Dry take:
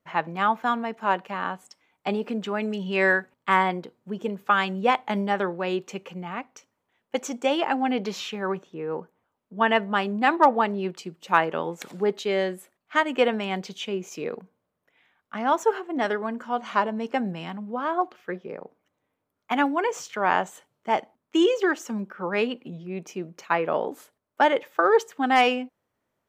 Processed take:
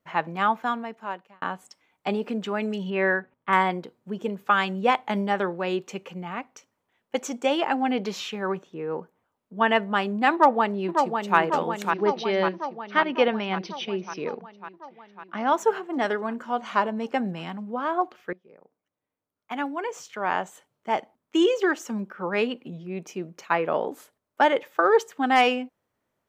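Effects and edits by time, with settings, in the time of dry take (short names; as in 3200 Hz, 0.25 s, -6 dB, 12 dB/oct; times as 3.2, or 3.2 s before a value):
0.47–1.42 fade out
2.9–3.53 air absorption 410 m
10.33–11.38 echo throw 0.55 s, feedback 70%, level -5 dB
11.9–15.54 brick-wall FIR low-pass 6200 Hz
18.33–21.57 fade in, from -20.5 dB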